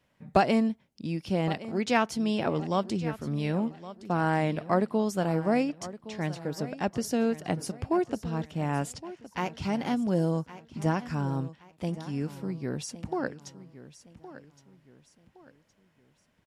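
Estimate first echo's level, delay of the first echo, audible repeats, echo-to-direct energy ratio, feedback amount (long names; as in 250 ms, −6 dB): −15.5 dB, 1,116 ms, 3, −15.0 dB, 36%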